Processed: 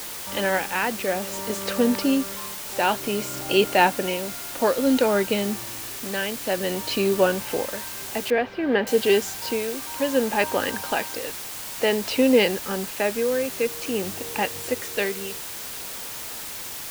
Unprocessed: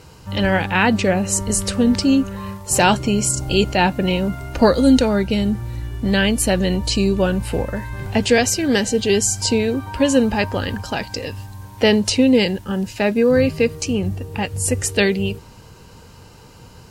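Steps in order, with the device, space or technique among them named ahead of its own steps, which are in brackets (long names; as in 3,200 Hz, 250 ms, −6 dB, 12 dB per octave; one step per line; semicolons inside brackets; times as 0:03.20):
shortwave radio (band-pass filter 350–2,900 Hz; amplitude tremolo 0.56 Hz, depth 64%; white noise bed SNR 10 dB)
0:08.30–0:08.87: high-frequency loss of the air 400 metres
level +1.5 dB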